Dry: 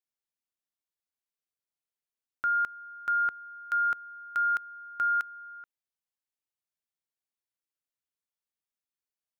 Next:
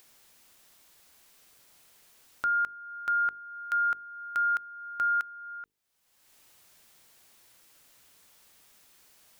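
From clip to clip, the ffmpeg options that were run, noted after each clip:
-af "acompressor=mode=upward:threshold=0.0178:ratio=2.5,bandreject=f=50:t=h:w=6,bandreject=f=100:t=h:w=6,bandreject=f=150:t=h:w=6,bandreject=f=200:t=h:w=6,bandreject=f=250:t=h:w=6,bandreject=f=300:t=h:w=6,bandreject=f=350:t=h:w=6,bandreject=f=400:t=h:w=6,bandreject=f=450:t=h:w=6"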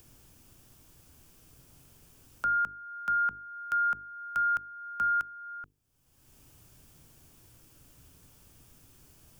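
-filter_complex "[0:a]equalizer=f=200:t=o:w=0.33:g=-11,equalizer=f=2000:t=o:w=0.33:g=-7,equalizer=f=4000:t=o:w=0.33:g=-7,acrossover=split=250|520|2000[s0][s1][s2][s3];[s0]aeval=exprs='0.00668*sin(PI/2*7.94*val(0)/0.00668)':c=same[s4];[s4][s1][s2][s3]amix=inputs=4:normalize=0"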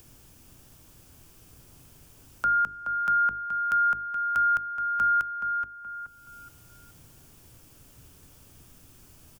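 -filter_complex "[0:a]asplit=2[s0][s1];[s1]adelay=424,lowpass=f=2100:p=1,volume=0.447,asplit=2[s2][s3];[s3]adelay=424,lowpass=f=2100:p=1,volume=0.38,asplit=2[s4][s5];[s5]adelay=424,lowpass=f=2100:p=1,volume=0.38,asplit=2[s6][s7];[s7]adelay=424,lowpass=f=2100:p=1,volume=0.38[s8];[s0][s2][s4][s6][s8]amix=inputs=5:normalize=0,volume=1.58"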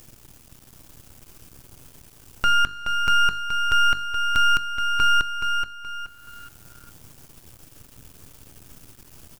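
-af "aeval=exprs='max(val(0),0)':c=same,volume=2.82"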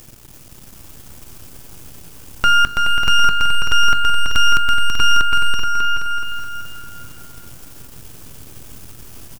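-af "aecho=1:1:330|594|805.2|974.2|1109:0.631|0.398|0.251|0.158|0.1,volume=2"

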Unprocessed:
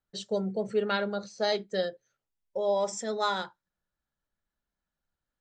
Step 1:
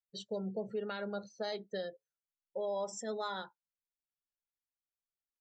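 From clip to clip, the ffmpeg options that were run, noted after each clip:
-af "afftdn=nr=18:nf=-44,alimiter=limit=0.0708:level=0:latency=1:release=147,volume=0.501"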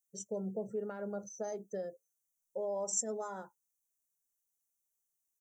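-af "firequalizer=gain_entry='entry(560,0);entry(4100,-30);entry(5900,13)':delay=0.05:min_phase=1"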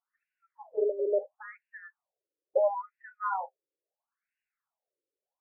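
-filter_complex "[0:a]asplit=2[s0][s1];[s1]alimiter=level_in=2.51:limit=0.0631:level=0:latency=1,volume=0.398,volume=1.26[s2];[s0][s2]amix=inputs=2:normalize=0,afftfilt=real='re*between(b*sr/1024,400*pow(2100/400,0.5+0.5*sin(2*PI*0.74*pts/sr))/1.41,400*pow(2100/400,0.5+0.5*sin(2*PI*0.74*pts/sr))*1.41)':imag='im*between(b*sr/1024,400*pow(2100/400,0.5+0.5*sin(2*PI*0.74*pts/sr))/1.41,400*pow(2100/400,0.5+0.5*sin(2*PI*0.74*pts/sr))*1.41)':win_size=1024:overlap=0.75,volume=2.66"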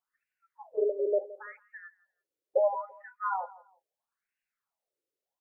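-filter_complex "[0:a]asplit=2[s0][s1];[s1]adelay=168,lowpass=f=1500:p=1,volume=0.126,asplit=2[s2][s3];[s3]adelay=168,lowpass=f=1500:p=1,volume=0.27[s4];[s0][s2][s4]amix=inputs=3:normalize=0"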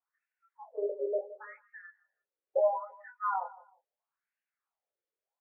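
-af "flanger=delay=19.5:depth=3:speed=1.3,highpass=520,lowpass=2000,volume=1.41"

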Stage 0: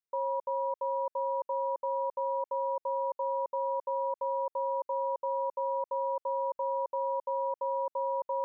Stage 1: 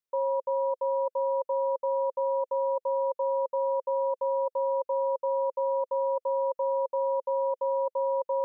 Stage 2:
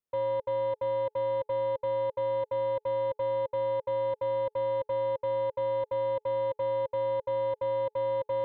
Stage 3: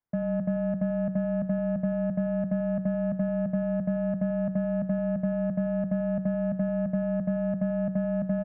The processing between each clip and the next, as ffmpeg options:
-af "equalizer=f=520:t=o:w=0.35:g=7"
-af "aeval=exprs='0.0891*(cos(1*acos(clip(val(0)/0.0891,-1,1)))-cos(1*PI/2))+0.00891*(cos(5*acos(clip(val(0)/0.0891,-1,1)))-cos(5*PI/2))':c=same,tiltshelf=f=970:g=5,bandreject=f=427.7:t=h:w=4,bandreject=f=855.4:t=h:w=4,volume=0.631"
-af "bandreject=f=60:t=h:w=6,bandreject=f=120:t=h:w=6,bandreject=f=180:t=h:w=6,bandreject=f=240:t=h:w=6,bandreject=f=300:t=h:w=6,bandreject=f=360:t=h:w=6,bandreject=f=420:t=h:w=6,bandreject=f=480:t=h:w=6,bandreject=f=540:t=h:w=6,aecho=1:1:89:0.224,highpass=f=220:t=q:w=0.5412,highpass=f=220:t=q:w=1.307,lowpass=f=2300:t=q:w=0.5176,lowpass=f=2300:t=q:w=0.7071,lowpass=f=2300:t=q:w=1.932,afreqshift=-350,volume=1.88"

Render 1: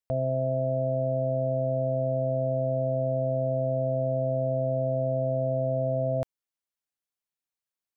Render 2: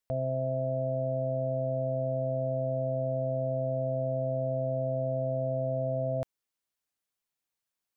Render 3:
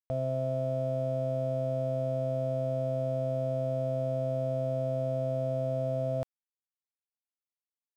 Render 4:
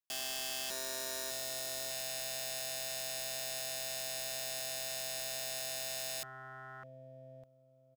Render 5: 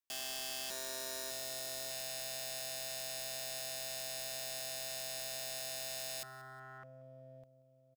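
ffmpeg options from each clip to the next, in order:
-af "alimiter=level_in=1.5:limit=0.0631:level=0:latency=1:release=10,volume=0.668,volume=1.5"
-af "aeval=exprs='sgn(val(0))*max(abs(val(0))-0.00178,0)':c=same"
-af "aecho=1:1:603|1206|1809:0.316|0.0854|0.0231,aeval=exprs='0.0891*(cos(1*acos(clip(val(0)/0.0891,-1,1)))-cos(1*PI/2))+0.0224*(cos(7*acos(clip(val(0)/0.0891,-1,1)))-cos(7*PI/2))':c=same,aeval=exprs='(mod(26.6*val(0)+1,2)-1)/26.6':c=same"
-af "aecho=1:1:183|366|549:0.0891|0.0348|0.0136,volume=0.75"

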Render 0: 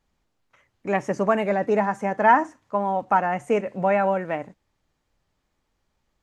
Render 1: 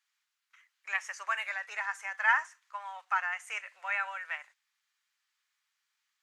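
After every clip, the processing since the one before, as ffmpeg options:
-af "highpass=f=1400:w=0.5412,highpass=f=1400:w=1.3066"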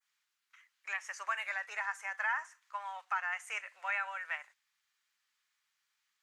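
-af "adynamicequalizer=threshold=0.00447:dfrequency=3700:dqfactor=0.79:tfrequency=3700:tqfactor=0.79:attack=5:release=100:ratio=0.375:range=2:mode=cutabove:tftype=bell,alimiter=limit=0.0668:level=0:latency=1:release=214"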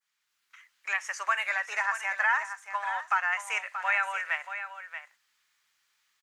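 -af "aecho=1:1:631:0.316,dynaudnorm=f=190:g=3:m=2.51"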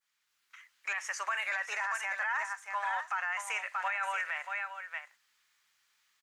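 -af "alimiter=level_in=1.06:limit=0.0631:level=0:latency=1:release=13,volume=0.944"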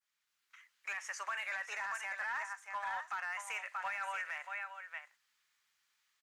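-af "asoftclip=type=hard:threshold=0.0473,volume=0.531"

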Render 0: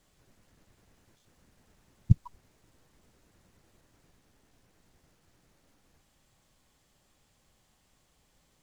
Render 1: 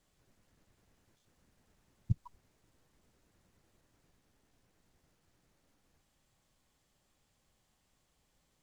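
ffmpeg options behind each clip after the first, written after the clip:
-af "alimiter=limit=0.316:level=0:latency=1:release=81,volume=0.473"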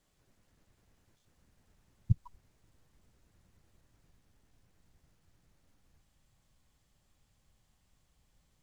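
-af "asubboost=boost=2:cutoff=200"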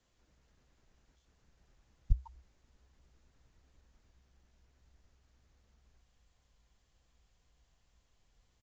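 -af "afreqshift=-65,aresample=16000,aresample=44100"

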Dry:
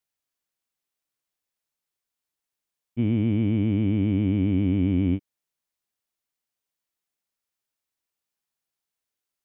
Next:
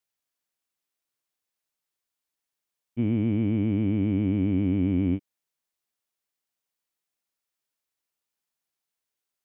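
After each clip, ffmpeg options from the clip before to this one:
-filter_complex "[0:a]acrossover=split=2700[s0][s1];[s1]acompressor=threshold=0.001:ratio=4:attack=1:release=60[s2];[s0][s2]amix=inputs=2:normalize=0,lowshelf=f=150:g=-4.5"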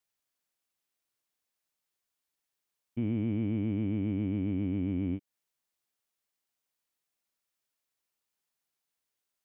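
-af "alimiter=limit=0.0708:level=0:latency=1:release=215"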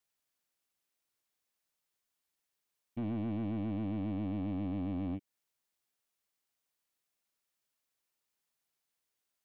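-af "asoftclip=type=tanh:threshold=0.0251"

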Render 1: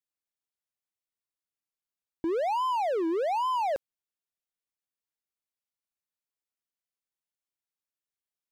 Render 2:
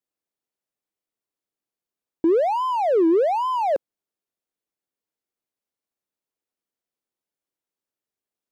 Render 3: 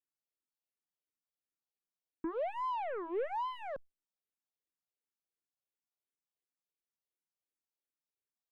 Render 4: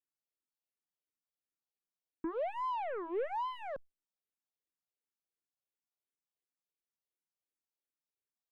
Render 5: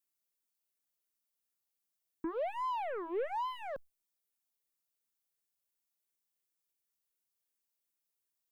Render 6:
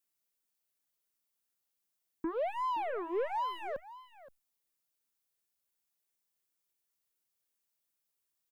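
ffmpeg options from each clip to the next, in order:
-af "equalizer=f=360:w=0.52:g=11"
-filter_complex "[0:a]aeval=exprs='(tanh(12.6*val(0)+0.2)-tanh(0.2))/12.6':c=same,asplit=2[s0][s1];[s1]afreqshift=-2.8[s2];[s0][s2]amix=inputs=2:normalize=1,volume=0.376"
-af anull
-af "crystalizer=i=1.5:c=0"
-af "aecho=1:1:522:0.15,volume=1.26"

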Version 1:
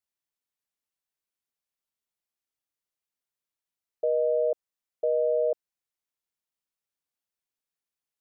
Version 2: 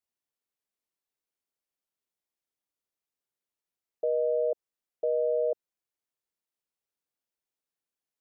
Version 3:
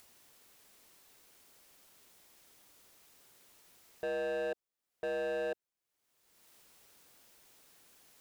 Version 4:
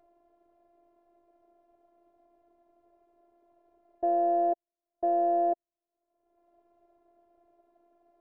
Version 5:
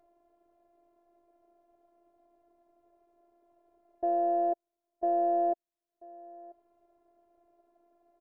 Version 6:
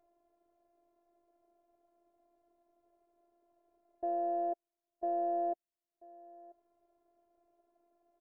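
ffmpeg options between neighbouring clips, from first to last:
-af "equalizer=f=400:t=o:w=1.9:g=5.5,alimiter=limit=0.133:level=0:latency=1:release=53,volume=0.708"
-af "acompressor=mode=upward:threshold=0.0141:ratio=2.5,volume=37.6,asoftclip=hard,volume=0.0266,volume=0.841"
-af "lowpass=f=600:t=q:w=4,afftfilt=real='hypot(re,im)*cos(PI*b)':imag='0':win_size=512:overlap=0.75,volume=1.88"
-af "aecho=1:1:987:0.0841,volume=0.794"
-af "volume=0.501" -ar 44100 -c:a aac -b:a 192k

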